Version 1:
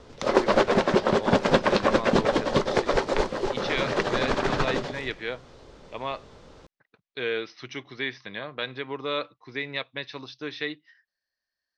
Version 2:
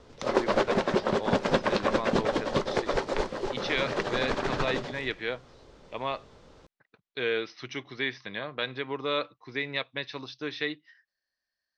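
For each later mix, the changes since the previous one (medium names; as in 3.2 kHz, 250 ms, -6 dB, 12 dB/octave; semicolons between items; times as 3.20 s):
background -4.5 dB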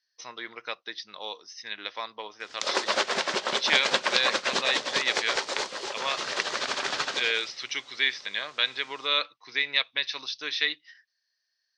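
background: entry +2.40 s; master: add frequency weighting ITU-R 468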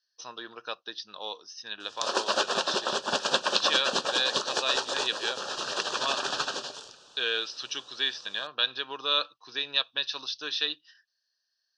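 background: entry -0.60 s; master: add Butterworth band-stop 2.1 kHz, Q 2.4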